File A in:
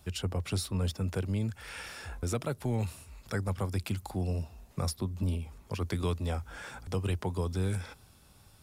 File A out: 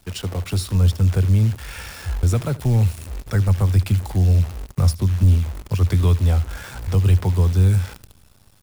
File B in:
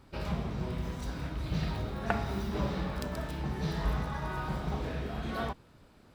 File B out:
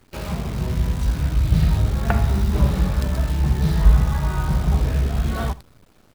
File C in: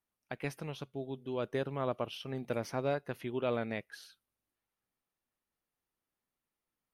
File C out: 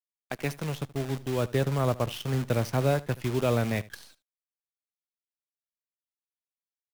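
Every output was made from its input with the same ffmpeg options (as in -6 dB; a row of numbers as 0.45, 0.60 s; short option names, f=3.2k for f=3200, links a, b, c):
-filter_complex "[0:a]acrossover=split=130|990[a][b][c];[a]dynaudnorm=f=150:g=9:m=13dB[d];[d][b][c]amix=inputs=3:normalize=0,acrusher=bits=8:dc=4:mix=0:aa=0.000001,aecho=1:1:76:0.1,volume=6dB"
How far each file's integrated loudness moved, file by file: +15.0, +14.0, +8.5 LU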